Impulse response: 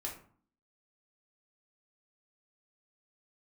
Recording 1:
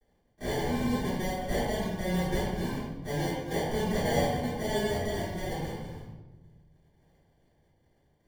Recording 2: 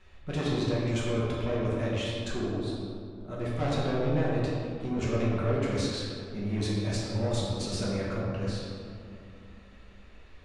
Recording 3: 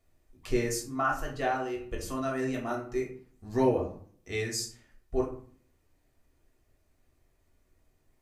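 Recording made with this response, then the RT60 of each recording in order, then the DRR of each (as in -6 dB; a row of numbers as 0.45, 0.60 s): 3; 1.1, 2.7, 0.50 s; -17.5, -7.0, -2.5 dB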